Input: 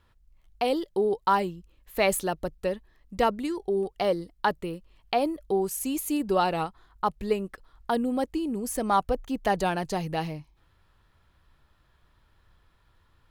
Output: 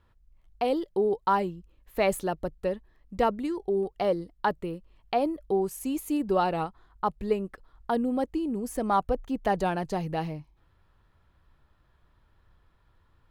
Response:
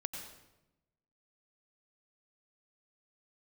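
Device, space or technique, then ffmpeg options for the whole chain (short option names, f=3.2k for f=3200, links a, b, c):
behind a face mask: -af "highshelf=f=2.1k:g=-8"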